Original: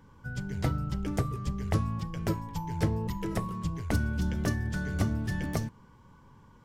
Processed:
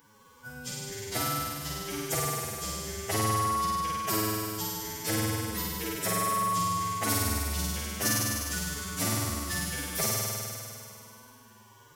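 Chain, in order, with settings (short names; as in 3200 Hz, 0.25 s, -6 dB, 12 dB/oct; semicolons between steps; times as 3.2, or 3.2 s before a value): RIAA curve recording; flutter echo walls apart 4.8 m, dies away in 1.4 s; time stretch by phase-locked vocoder 1.8×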